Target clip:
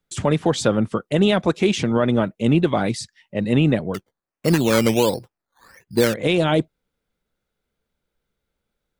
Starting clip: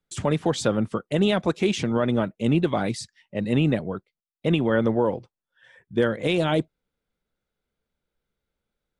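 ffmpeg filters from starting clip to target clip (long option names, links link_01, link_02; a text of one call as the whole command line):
ffmpeg -i in.wav -filter_complex "[0:a]asettb=1/sr,asplit=3[link_01][link_02][link_03];[link_01]atrim=end=3.944[link_04];[link_02]atrim=start=3.94:end=6.14,asetpts=PTS-STARTPTS,afade=type=in:duration=0.004:curve=qsin,afade=type=out:start_time=2.196:duration=0.004:curve=qsin,acrusher=samples=13:mix=1:aa=0.000001:lfo=1:lforange=7.8:lforate=1.4[link_05];[link_03]atrim=start=6.136[link_06];[link_04][link_05]acrossfade=duration=0.004:curve1=hsin:curve2=qsin[link_07];[link_07][link_06]acrossfade=duration=0.004:curve1=qsin:curve2=hsin,volume=4dB" out.wav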